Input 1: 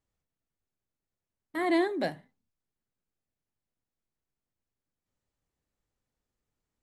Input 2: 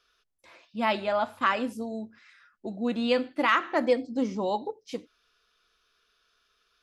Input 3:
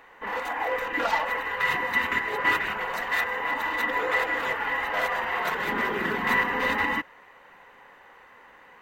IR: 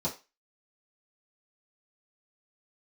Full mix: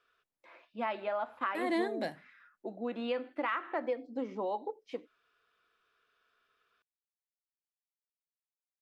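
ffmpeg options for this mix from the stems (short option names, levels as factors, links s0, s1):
-filter_complex "[0:a]lowshelf=f=120:g=-11,volume=0.562[s0];[1:a]acrossover=split=270 2800:gain=0.112 1 0.112[s1][s2][s3];[s1][s2][s3]amix=inputs=3:normalize=0,acompressor=threshold=0.0282:ratio=3,volume=0.841[s4];[s0][s4]amix=inputs=2:normalize=0"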